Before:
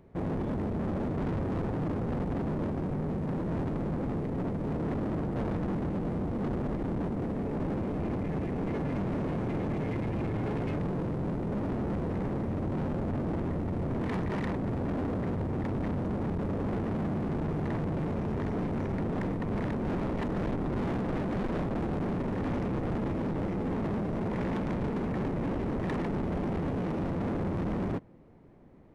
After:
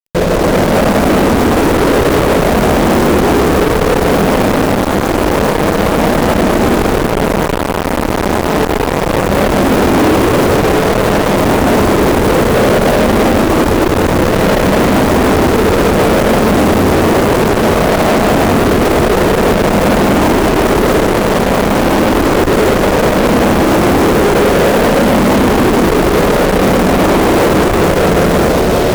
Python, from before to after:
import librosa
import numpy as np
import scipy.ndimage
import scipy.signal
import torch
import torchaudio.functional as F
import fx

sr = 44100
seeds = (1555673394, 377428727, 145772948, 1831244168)

p1 = fx.spec_ripple(x, sr, per_octave=0.58, drift_hz=0.58, depth_db=10)
p2 = fx.graphic_eq(p1, sr, hz=(125, 500, 2000), db=(-10, 6, -3))
p3 = fx.over_compress(p2, sr, threshold_db=-32.0, ratio=-0.5)
p4 = p2 + (p3 * librosa.db_to_amplitude(0.0))
p5 = fx.high_shelf(p4, sr, hz=3100.0, db=-11.5)
p6 = fx.quant_dither(p5, sr, seeds[0], bits=8, dither='none')
p7 = p6 + fx.echo_feedback(p6, sr, ms=201, feedback_pct=55, wet_db=-9, dry=0)
p8 = fx.rev_freeverb(p7, sr, rt60_s=5.0, hf_ratio=1.0, predelay_ms=105, drr_db=-7.5)
p9 = fx.fuzz(p8, sr, gain_db=33.0, gate_db=-36.0)
p10 = fx.transformer_sat(p9, sr, knee_hz=130.0)
y = p10 * librosa.db_to_amplitude(6.0)